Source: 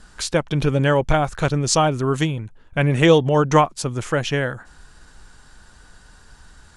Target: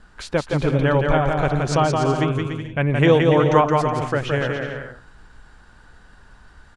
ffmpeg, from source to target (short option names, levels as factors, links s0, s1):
-af "bass=f=250:g=-1,treble=f=4000:g=-13,aecho=1:1:170|289|372.3|430.6|471.4:0.631|0.398|0.251|0.158|0.1,volume=0.841"